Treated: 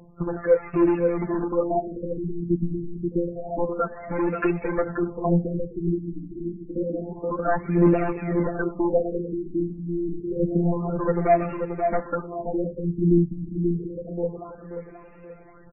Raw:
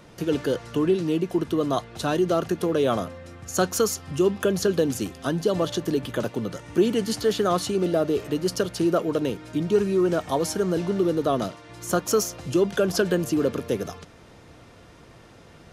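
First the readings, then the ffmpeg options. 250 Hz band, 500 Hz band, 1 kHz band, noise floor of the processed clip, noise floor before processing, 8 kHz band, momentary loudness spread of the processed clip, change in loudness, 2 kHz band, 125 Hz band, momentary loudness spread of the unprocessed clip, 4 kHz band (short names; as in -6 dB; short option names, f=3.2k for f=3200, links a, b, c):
+0.5 dB, -1.5 dB, +1.0 dB, -46 dBFS, -49 dBFS, under -40 dB, 10 LU, -1.0 dB, -2.0 dB, +3.0 dB, 7 LU, under -30 dB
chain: -filter_complex "[0:a]agate=range=-10dB:threshold=-38dB:ratio=16:detection=peak,afftfilt=real='hypot(re,im)*cos(PI*b)':imag='0':win_size=1024:overlap=0.75,asplit=2[a][b];[b]acompressor=threshold=-34dB:ratio=8,volume=-1.5dB[c];[a][c]amix=inputs=2:normalize=0,asoftclip=type=hard:threshold=-21dB,aphaser=in_gain=1:out_gain=1:delay=4.7:decay=0.67:speed=0.38:type=triangular,highshelf=f=4.1k:g=10.5,asplit=2[d][e];[e]adelay=532,lowpass=f=1.7k:p=1,volume=-5dB,asplit=2[f][g];[g]adelay=532,lowpass=f=1.7k:p=1,volume=0.39,asplit=2[h][i];[i]adelay=532,lowpass=f=1.7k:p=1,volume=0.39,asplit=2[j][k];[k]adelay=532,lowpass=f=1.7k:p=1,volume=0.39,asplit=2[l][m];[m]adelay=532,lowpass=f=1.7k:p=1,volume=0.39[n];[d][f][h][j][l][n]amix=inputs=6:normalize=0,afftfilt=real='re*lt(b*sr/1024,340*pow(2800/340,0.5+0.5*sin(2*PI*0.28*pts/sr)))':imag='im*lt(b*sr/1024,340*pow(2800/340,0.5+0.5*sin(2*PI*0.28*pts/sr)))':win_size=1024:overlap=0.75,volume=1.5dB"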